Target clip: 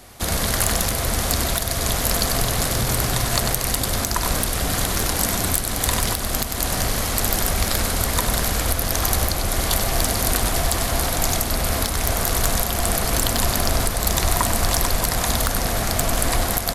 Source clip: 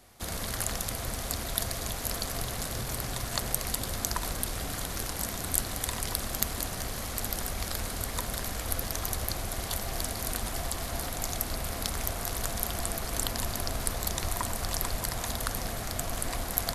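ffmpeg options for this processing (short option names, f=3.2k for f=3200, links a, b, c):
-af "aecho=1:1:97:0.376,alimiter=limit=-11.5dB:level=0:latency=1:release=313,aeval=exprs='0.266*sin(PI/2*1.58*val(0)/0.266)':c=same,volume=4.5dB"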